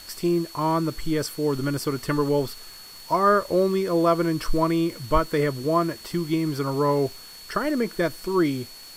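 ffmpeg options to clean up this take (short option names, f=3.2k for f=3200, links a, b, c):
-af "adeclick=t=4,bandreject=f=4.4k:w=30,afwtdn=0.005"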